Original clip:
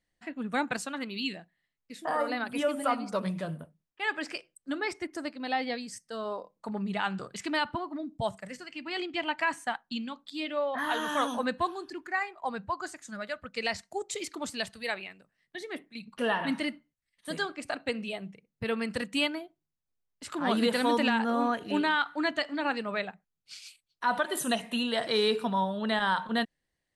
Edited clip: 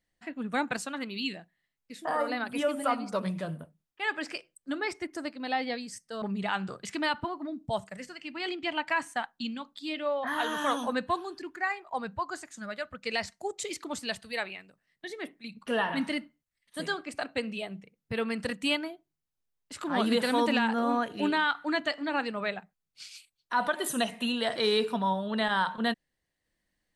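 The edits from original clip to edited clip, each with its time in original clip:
0:06.22–0:06.73: remove

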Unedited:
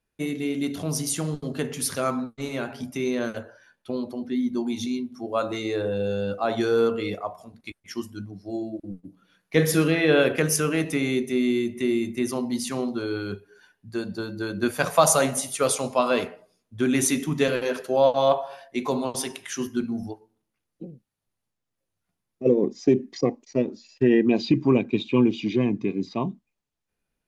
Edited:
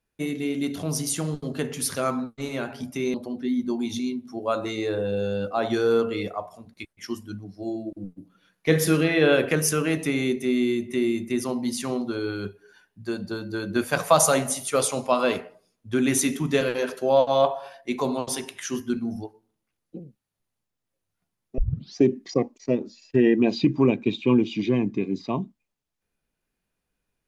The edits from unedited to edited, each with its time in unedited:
0:03.14–0:04.01: remove
0:22.45: tape start 0.39 s

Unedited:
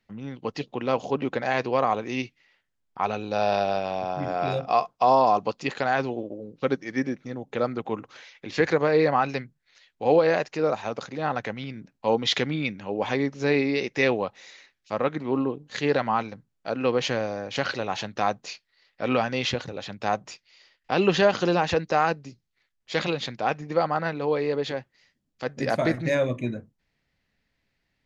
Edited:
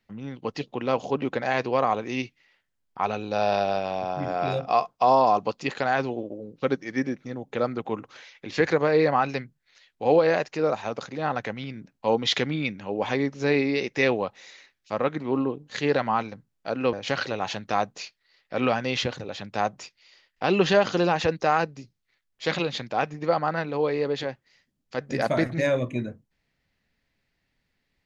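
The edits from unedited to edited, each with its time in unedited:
0:16.93–0:17.41: remove

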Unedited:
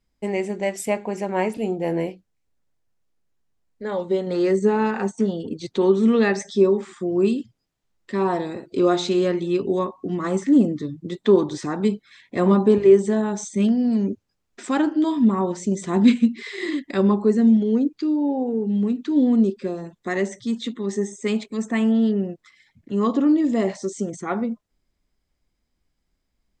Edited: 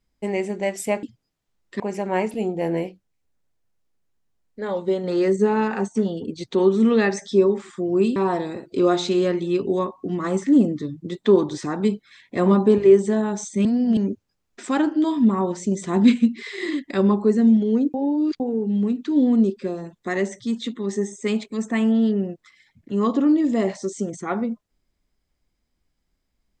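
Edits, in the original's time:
0:07.39–0:08.16: move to 0:01.03
0:13.65–0:13.97: reverse
0:17.94–0:18.40: reverse

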